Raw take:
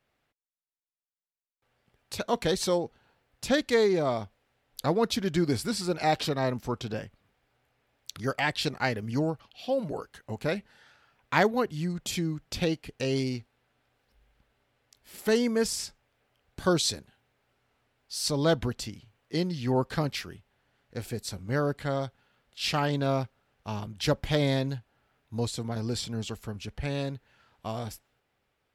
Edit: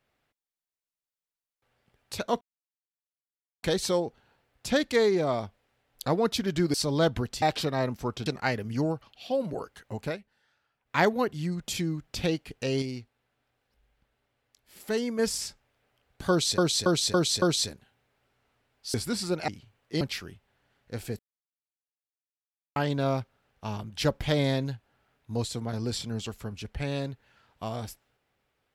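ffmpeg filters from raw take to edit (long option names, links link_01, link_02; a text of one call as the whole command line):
ffmpeg -i in.wav -filter_complex "[0:a]asplit=18[link_01][link_02][link_03][link_04][link_05][link_06][link_07][link_08][link_09][link_10][link_11][link_12][link_13][link_14][link_15][link_16][link_17][link_18];[link_01]atrim=end=2.41,asetpts=PTS-STARTPTS,afade=type=out:start_time=2.406:duration=0.004:curve=hsin,apad=pad_dur=1.22[link_19];[link_02]atrim=start=2.41:end=5.522,asetpts=PTS-STARTPTS,afade=type=in:duration=0.004:curve=hsin[link_20];[link_03]atrim=start=18.198:end=18.882[link_21];[link_04]atrim=start=6.058:end=6.902[link_22];[link_05]atrim=start=8.638:end=10.56,asetpts=PTS-STARTPTS,afade=type=out:start_time=1.732:duration=0.19:curve=qsin:silence=0.223872[link_23];[link_06]atrim=start=10.56:end=11.23,asetpts=PTS-STARTPTS,volume=-13dB[link_24];[link_07]atrim=start=11.23:end=13.202,asetpts=PTS-STARTPTS,afade=type=in:duration=0.19:curve=qsin:silence=0.223872[link_25];[link_08]atrim=start=13.198:end=15.572,asetpts=PTS-STARTPTS,volume=-4.5dB[link_26];[link_09]atrim=start=15.568:end=16.962[link_27];[link_10]atrim=start=16.678:end=16.962[link_28];[link_11]atrim=start=16.678:end=16.962[link_29];[link_12]atrim=start=16.678:end=16.962[link_30];[link_13]atrim=start=16.678:end=18.202[link_31];[link_14]atrim=start=5.518:end=6.062[link_32];[link_15]atrim=start=18.878:end=19.412[link_33];[link_16]atrim=start=20.038:end=21.22,asetpts=PTS-STARTPTS,afade=type=out:start_time=1.178:duration=0.004:curve=hsin[link_34];[link_17]atrim=start=21.22:end=22.79,asetpts=PTS-STARTPTS,volume=0[link_35];[link_18]atrim=start=22.79,asetpts=PTS-STARTPTS,afade=type=in:duration=0.004:curve=hsin[link_36];[link_19][link_20]concat=n=2:v=0:a=1[link_37];[link_37][link_21]acrossfade=duration=0.004:curve1=hsin:curve2=hsin[link_38];[link_38][link_22]acrossfade=duration=0.004:curve1=hsin:curve2=hsin[link_39];[link_23][link_24][link_25]concat=n=3:v=0:a=1[link_40];[link_39][link_40]acrossfade=duration=0.004:curve1=hsin:curve2=hsin[link_41];[link_41][link_26]acrossfade=duration=0.004:curve1=hsin:curve2=hsin[link_42];[link_42][link_27]acrossfade=duration=0.004:curve1=hsin:curve2=hsin[link_43];[link_43][link_28]acrossfade=duration=0.004:curve1=hsin:curve2=hsin[link_44];[link_44][link_29]acrossfade=duration=0.004:curve1=hsin:curve2=hsin[link_45];[link_45][link_30]acrossfade=duration=0.004:curve1=hsin:curve2=hsin[link_46];[link_46][link_31]acrossfade=duration=0.004:curve1=hsin:curve2=hsin[link_47];[link_47][link_32]acrossfade=duration=0.004:curve1=hsin:curve2=hsin[link_48];[link_48][link_33]acrossfade=duration=0.004:curve1=hsin:curve2=hsin[link_49];[link_34][link_35][link_36]concat=n=3:v=0:a=1[link_50];[link_49][link_50]acrossfade=duration=0.004:curve1=hsin:curve2=hsin" out.wav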